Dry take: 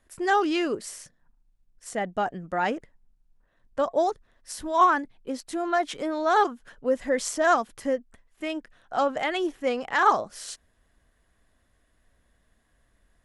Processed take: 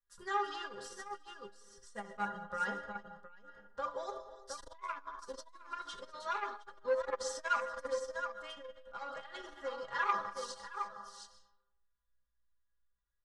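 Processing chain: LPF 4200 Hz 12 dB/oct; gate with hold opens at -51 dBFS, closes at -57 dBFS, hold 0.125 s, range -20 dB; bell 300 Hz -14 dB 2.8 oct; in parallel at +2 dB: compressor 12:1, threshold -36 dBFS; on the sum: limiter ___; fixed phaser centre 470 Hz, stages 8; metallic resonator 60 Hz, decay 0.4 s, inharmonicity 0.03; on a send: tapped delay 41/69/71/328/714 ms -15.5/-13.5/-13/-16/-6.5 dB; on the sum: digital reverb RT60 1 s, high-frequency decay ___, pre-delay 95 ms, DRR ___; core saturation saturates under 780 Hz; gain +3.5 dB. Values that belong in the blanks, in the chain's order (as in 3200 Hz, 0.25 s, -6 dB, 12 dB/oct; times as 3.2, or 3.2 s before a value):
-16 dBFS, 0.5×, 10.5 dB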